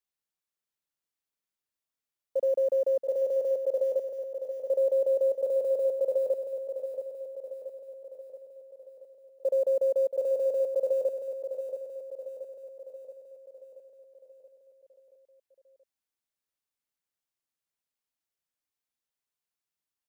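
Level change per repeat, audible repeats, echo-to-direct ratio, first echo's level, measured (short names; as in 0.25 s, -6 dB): -5.0 dB, 6, -6.5 dB, -8.0 dB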